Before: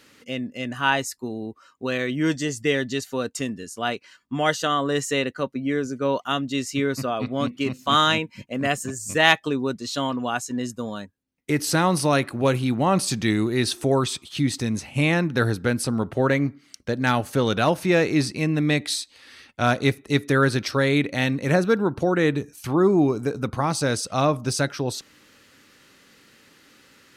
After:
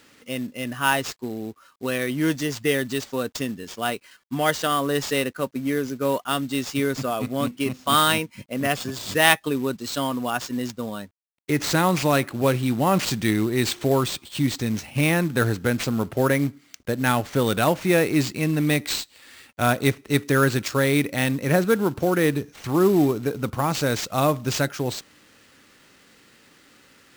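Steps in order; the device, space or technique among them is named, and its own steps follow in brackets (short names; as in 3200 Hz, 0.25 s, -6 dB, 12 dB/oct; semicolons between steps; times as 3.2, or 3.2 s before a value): early companding sampler (sample-rate reducer 12000 Hz, jitter 0%; companded quantiser 6-bit)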